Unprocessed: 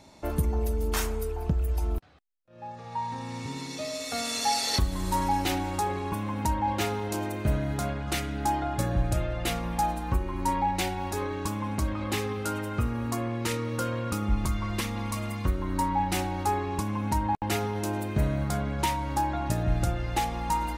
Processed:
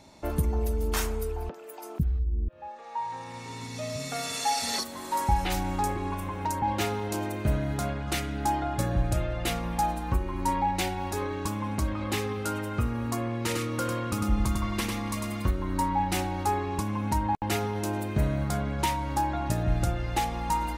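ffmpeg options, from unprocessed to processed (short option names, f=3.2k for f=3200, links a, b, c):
-filter_complex "[0:a]asettb=1/sr,asplit=3[a][b][c];[a]atrim=end=1.494[d];[b]atrim=start=1.49:end=6.63,asetpts=PTS-STARTPTS,afade=t=in:d=0.004:c=qsin,afade=t=out:st=5.136:d=0.004:c=qsin,acrossover=split=320|4100[e][f][g];[g]adelay=50[h];[e]adelay=500[i];[i][f][h]amix=inputs=3:normalize=0,atrim=end_sample=226674[j];[c]atrim=start=6.626[k];[d][j]acrossfade=d=0.004:c1=hsin:c2=qsin[l];[l][k]acrossfade=d=0.004:c1=qsin:c2=hsin,asettb=1/sr,asplit=3[m][n][o];[m]atrim=end=13.394[p];[n]atrim=start=13.39:end=15.51,asetpts=PTS-STARTPTS,afade=t=in:d=0.004:c=qsin,afade=t=out:st=2.116:d=0.004:c=qsin,aecho=1:1:100:0.631,atrim=end_sample=93492[q];[o]atrim=start=15.506[r];[p][q]acrossfade=d=0.004:c1=hsin:c2=qsin[s];[s][r]acrossfade=d=0.004:c1=qsin:c2=hsin"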